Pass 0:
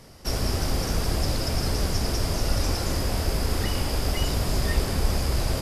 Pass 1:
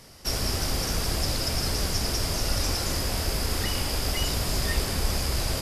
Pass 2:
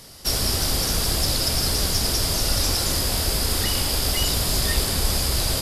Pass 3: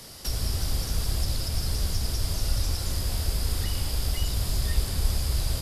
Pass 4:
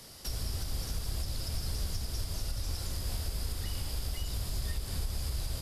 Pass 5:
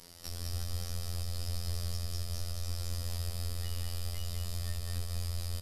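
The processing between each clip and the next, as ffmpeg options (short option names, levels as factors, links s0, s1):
-af "tiltshelf=f=1400:g=-3.5"
-af "highshelf=f=10000:g=-7,aexciter=amount=1.8:drive=6.1:freq=3300,volume=1.41"
-filter_complex "[0:a]acrossover=split=130[s0][s1];[s1]acompressor=threshold=0.0178:ratio=4[s2];[s0][s2]amix=inputs=2:normalize=0"
-af "alimiter=limit=0.119:level=0:latency=1:release=152,volume=0.501"
-af "afftfilt=real='hypot(re,im)*cos(PI*b)':imag='0':win_size=2048:overlap=0.75,aecho=1:1:199:0.631"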